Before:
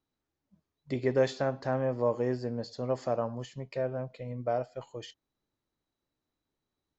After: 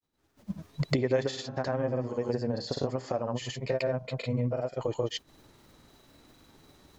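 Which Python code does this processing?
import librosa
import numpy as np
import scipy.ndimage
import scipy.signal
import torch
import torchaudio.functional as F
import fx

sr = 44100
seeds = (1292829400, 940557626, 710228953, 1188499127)

y = fx.recorder_agc(x, sr, target_db=-19.5, rise_db_per_s=59.0, max_gain_db=30)
y = fx.granulator(y, sr, seeds[0], grain_ms=100.0, per_s=20.0, spray_ms=100.0, spread_st=0)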